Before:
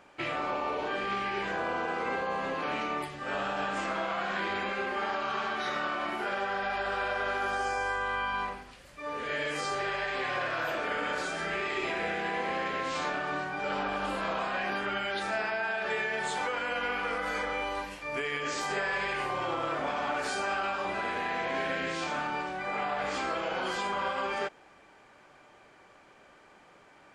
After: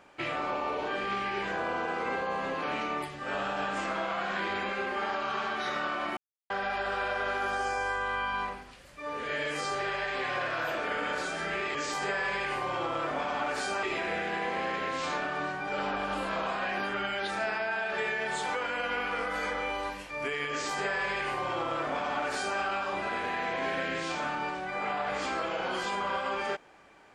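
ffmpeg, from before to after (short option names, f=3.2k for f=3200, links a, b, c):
-filter_complex "[0:a]asplit=5[a][b][c][d][e];[a]atrim=end=6.17,asetpts=PTS-STARTPTS,afade=t=out:st=6.166:d=0.004:c=hsin[f];[b]atrim=start=6.17:end=6.5,asetpts=PTS-STARTPTS,volume=0[g];[c]atrim=start=6.5:end=11.752,asetpts=PTS-STARTPTS,afade=t=in:d=0.004:c=hsin[h];[d]atrim=start=18.428:end=20.512[i];[e]atrim=start=11.748[j];[f][g][h]concat=n=3:v=0:a=1[k];[k][i]acrossfade=d=0.004:c1=hsin:c2=hsin[l];[l][j]acrossfade=d=0.004:c1=hsin:c2=hsin"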